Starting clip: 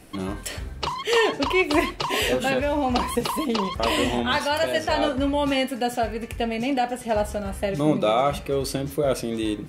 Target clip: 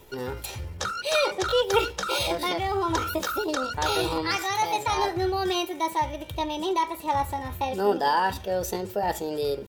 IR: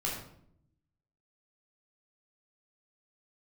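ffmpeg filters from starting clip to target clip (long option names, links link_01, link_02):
-af "aecho=1:1:2.9:0.41,asetrate=58866,aresample=44100,atempo=0.749154,volume=-3.5dB"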